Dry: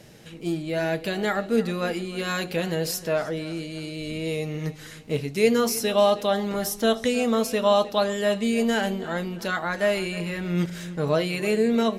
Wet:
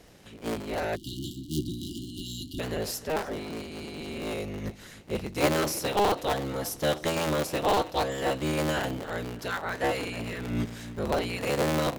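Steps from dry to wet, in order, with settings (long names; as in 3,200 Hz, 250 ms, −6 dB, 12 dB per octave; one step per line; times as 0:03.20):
sub-harmonics by changed cycles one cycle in 3, inverted
time-frequency box erased 0:00.96–0:02.60, 380–2,800 Hz
level −5 dB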